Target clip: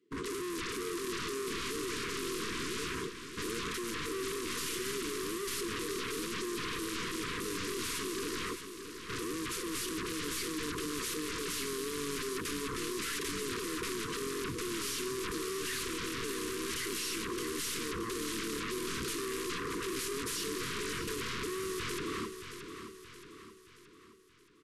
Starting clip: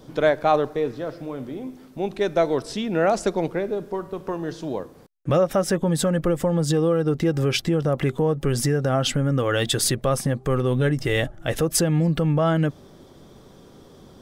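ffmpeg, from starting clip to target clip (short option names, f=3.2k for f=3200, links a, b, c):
-filter_complex "[0:a]agate=range=-48dB:threshold=-37dB:ratio=16:detection=peak,acompressor=threshold=-25dB:ratio=5,asplit=4[a][b][c][d];[b]asetrate=22050,aresample=44100,atempo=2,volume=-18dB[e];[c]asetrate=35002,aresample=44100,atempo=1.25992,volume=-15dB[f];[d]asetrate=66075,aresample=44100,atempo=0.66742,volume=-6dB[g];[a][e][f][g]amix=inputs=4:normalize=0,highpass=f=650:t=q:w=4.9,aeval=exprs='(tanh(70.8*val(0)+0.1)-tanh(0.1))/70.8':c=same,aeval=exprs='0.0158*sin(PI/2*5.62*val(0)/0.0158)':c=same,asuperstop=centerf=1200:order=20:qfactor=1.4,asplit=2[h][i];[i]aecho=0:1:360|720|1080|1440|1800|2160:0.355|0.174|0.0852|0.0417|0.0205|0.01[j];[h][j]amix=inputs=2:normalize=0,asetrate=25442,aresample=44100,volume=2dB"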